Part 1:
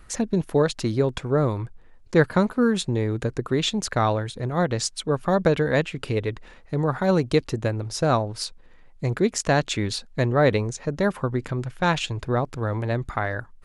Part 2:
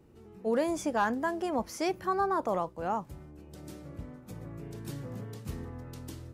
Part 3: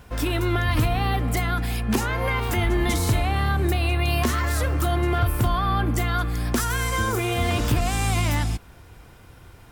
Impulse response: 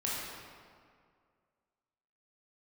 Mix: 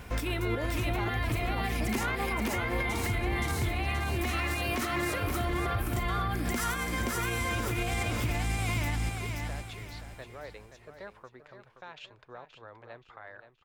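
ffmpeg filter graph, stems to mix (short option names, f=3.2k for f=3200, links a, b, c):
-filter_complex "[0:a]acrossover=split=470 5000:gain=0.158 1 0.0794[a][b][c];[a][b][c]amix=inputs=3:normalize=0,alimiter=limit=-16.5dB:level=0:latency=1:release=107,volume=-17dB,asplit=3[d][e][f];[e]volume=-10dB[g];[1:a]volume=-6dB[h];[2:a]equalizer=f=2.2k:t=o:w=0.42:g=6.5,volume=1.5dB,asplit=2[i][j];[j]volume=-7.5dB[k];[f]apad=whole_len=428310[l];[i][l]sidechaincompress=threshold=-54dB:ratio=8:attack=21:release=473[m];[g][k]amix=inputs=2:normalize=0,aecho=0:1:525|1050|1575|2100|2625:1|0.37|0.137|0.0507|0.0187[n];[d][h][m][n]amix=inputs=4:normalize=0,alimiter=limit=-21.5dB:level=0:latency=1:release=105"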